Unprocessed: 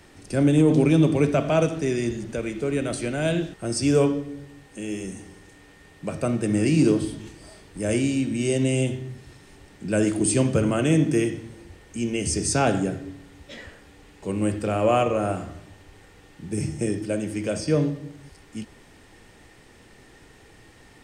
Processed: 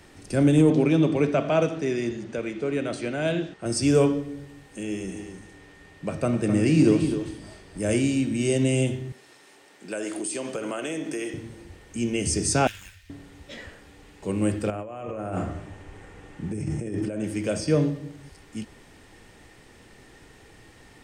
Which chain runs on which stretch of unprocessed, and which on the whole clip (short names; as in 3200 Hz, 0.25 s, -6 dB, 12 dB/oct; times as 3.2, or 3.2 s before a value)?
0.7–3.66 HPF 200 Hz 6 dB/oct + air absorption 81 m
4.83–7.78 high shelf 7800 Hz -7 dB + echo 0.258 s -9 dB
9.12–11.34 HPF 420 Hz + compressor 10:1, threshold -26 dBFS
12.67–13.1 inverse Chebyshev band-stop 180–760 Hz, stop band 60 dB + running maximum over 3 samples
14.7–17.24 bell 4400 Hz -9 dB 1.3 oct + negative-ratio compressor -31 dBFS + LPF 7800 Hz
whole clip: dry